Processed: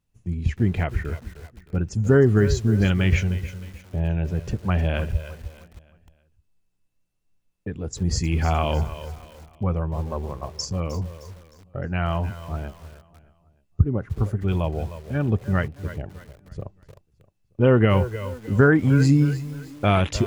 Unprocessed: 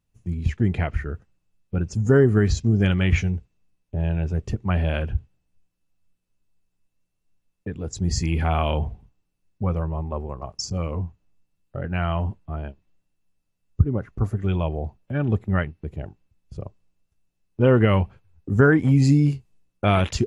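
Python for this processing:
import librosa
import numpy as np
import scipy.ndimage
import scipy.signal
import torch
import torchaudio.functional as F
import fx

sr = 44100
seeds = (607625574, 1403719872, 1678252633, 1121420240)

y = fx.echo_feedback(x, sr, ms=309, feedback_pct=42, wet_db=-16.5)
y = fx.echo_crushed(y, sr, ms=307, feedback_pct=35, bits=6, wet_db=-15)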